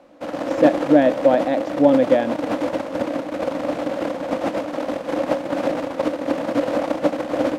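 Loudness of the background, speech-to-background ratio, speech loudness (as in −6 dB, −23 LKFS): −24.5 LKFS, 6.5 dB, −18.0 LKFS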